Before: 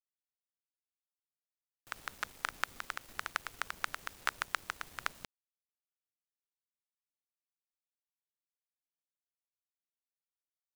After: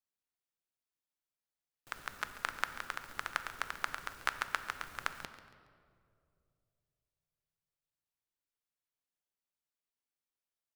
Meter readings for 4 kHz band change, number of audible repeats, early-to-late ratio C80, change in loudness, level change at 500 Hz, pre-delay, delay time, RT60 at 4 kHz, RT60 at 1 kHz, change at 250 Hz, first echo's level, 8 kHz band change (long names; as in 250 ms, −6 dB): −0.5 dB, 3, 10.5 dB, +0.5 dB, +1.5 dB, 3 ms, 139 ms, 1.3 s, 2.0 s, +1.5 dB, −15.0 dB, −1.5 dB